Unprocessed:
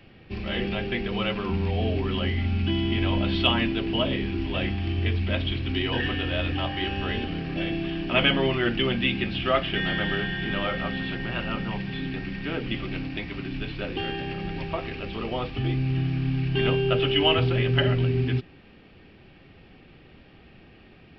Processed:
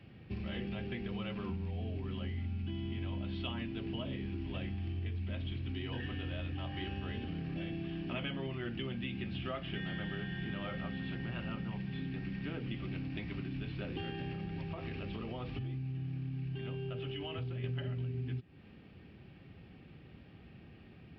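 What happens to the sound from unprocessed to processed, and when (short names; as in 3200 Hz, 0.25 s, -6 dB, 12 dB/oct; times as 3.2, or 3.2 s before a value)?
14.35–17.64 compressor, threshold -30 dBFS
whole clip: HPF 73 Hz; tone controls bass +9 dB, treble -3 dB; compressor, threshold -28 dBFS; gain -8 dB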